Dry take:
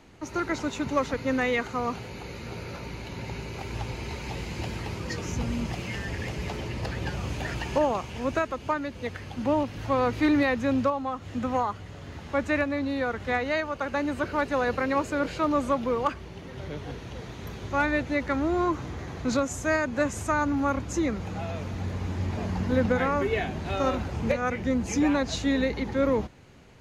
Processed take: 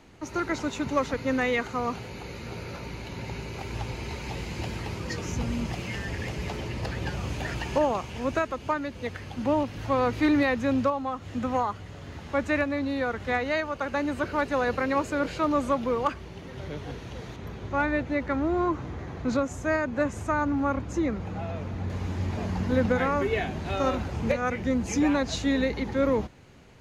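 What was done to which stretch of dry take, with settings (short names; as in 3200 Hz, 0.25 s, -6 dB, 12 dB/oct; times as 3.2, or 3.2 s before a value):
17.36–21.9 high shelf 3300 Hz -10 dB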